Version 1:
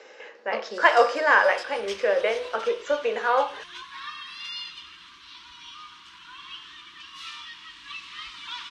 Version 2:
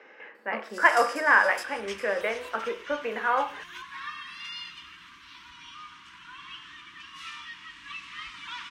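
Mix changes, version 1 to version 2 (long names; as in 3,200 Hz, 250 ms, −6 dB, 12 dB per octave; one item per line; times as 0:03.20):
speech: add high-frequency loss of the air 230 metres
first sound: remove high-frequency loss of the air 87 metres
master: add graphic EQ with 10 bands 125 Hz +4 dB, 250 Hz +4 dB, 500 Hz −8 dB, 2,000 Hz +4 dB, 4,000 Hz −8 dB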